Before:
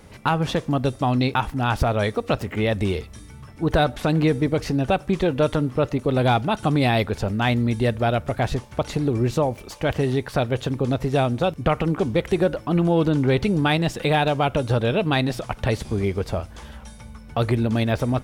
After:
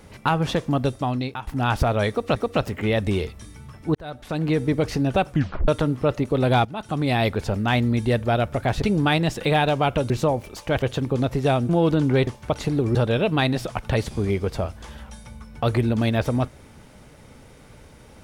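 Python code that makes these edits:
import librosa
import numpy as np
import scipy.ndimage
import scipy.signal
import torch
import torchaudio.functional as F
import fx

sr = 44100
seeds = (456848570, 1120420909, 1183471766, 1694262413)

y = fx.edit(x, sr, fx.fade_out_to(start_s=0.82, length_s=0.65, floor_db=-15.0),
    fx.repeat(start_s=2.1, length_s=0.26, count=2),
    fx.fade_in_span(start_s=3.69, length_s=0.78),
    fx.tape_stop(start_s=5.04, length_s=0.38),
    fx.fade_in_from(start_s=6.39, length_s=0.66, floor_db=-13.5),
    fx.swap(start_s=8.56, length_s=0.68, other_s=13.41, other_length_s=1.28),
    fx.cut(start_s=9.96, length_s=0.55),
    fx.cut(start_s=11.38, length_s=1.45), tone=tone)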